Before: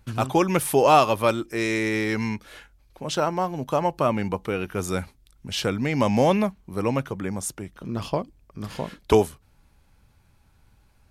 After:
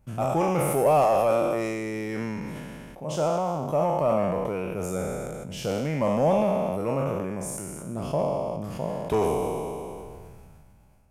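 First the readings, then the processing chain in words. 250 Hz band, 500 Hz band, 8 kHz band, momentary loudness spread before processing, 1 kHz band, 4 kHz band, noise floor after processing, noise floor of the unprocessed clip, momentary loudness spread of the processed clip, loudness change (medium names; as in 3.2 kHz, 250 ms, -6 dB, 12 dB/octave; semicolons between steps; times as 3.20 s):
-3.5 dB, 0.0 dB, -3.5 dB, 14 LU, -2.5 dB, -10.0 dB, -52 dBFS, -60 dBFS, 13 LU, -2.5 dB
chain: spectral sustain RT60 1.38 s; saturation -11 dBFS, distortion -15 dB; fifteen-band graphic EQ 160 Hz +7 dB, 630 Hz +8 dB, 1.6 kHz -5 dB, 4 kHz -11 dB; decay stretcher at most 21 dB/s; trim -8 dB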